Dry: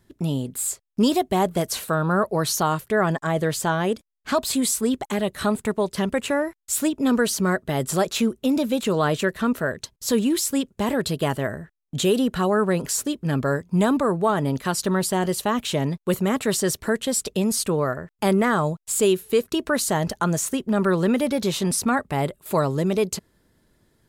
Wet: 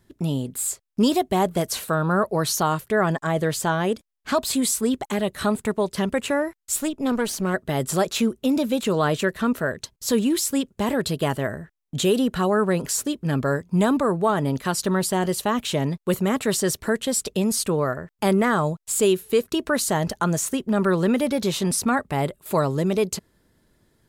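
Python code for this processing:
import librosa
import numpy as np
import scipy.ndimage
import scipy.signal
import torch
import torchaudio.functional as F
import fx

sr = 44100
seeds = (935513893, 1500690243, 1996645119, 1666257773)

y = fx.tube_stage(x, sr, drive_db=13.0, bias=0.7, at=(6.76, 7.54))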